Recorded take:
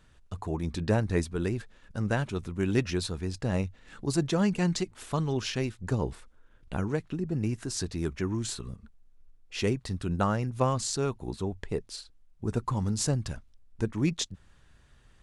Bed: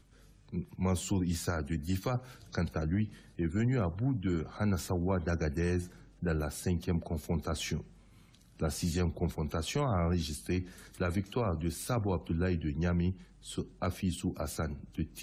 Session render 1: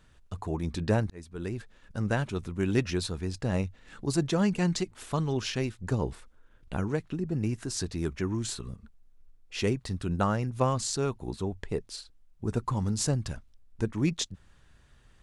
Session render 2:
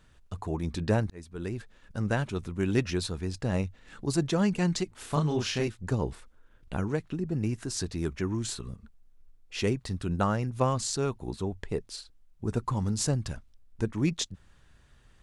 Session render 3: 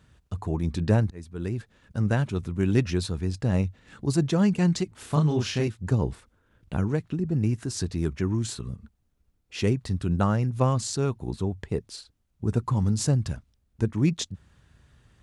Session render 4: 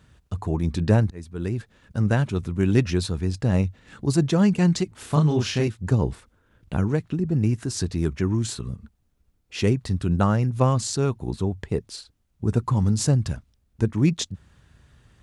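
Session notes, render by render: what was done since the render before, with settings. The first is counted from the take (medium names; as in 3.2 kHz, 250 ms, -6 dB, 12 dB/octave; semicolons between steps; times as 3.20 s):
1.10–2.05 s: fade in equal-power
4.96–5.68 s: doubling 33 ms -3 dB
high-pass 79 Hz; bass shelf 190 Hz +10 dB
trim +3 dB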